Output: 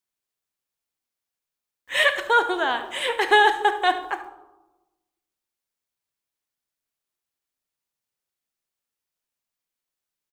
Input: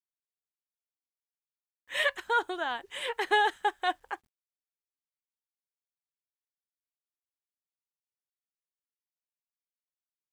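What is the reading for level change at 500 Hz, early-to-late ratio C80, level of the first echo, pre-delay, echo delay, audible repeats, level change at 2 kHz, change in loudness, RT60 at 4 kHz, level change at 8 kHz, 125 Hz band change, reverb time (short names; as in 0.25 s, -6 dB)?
+9.5 dB, 13.5 dB, -15.0 dB, 8 ms, 72 ms, 1, +9.0 dB, +9.0 dB, 0.55 s, +9.0 dB, n/a, 1.1 s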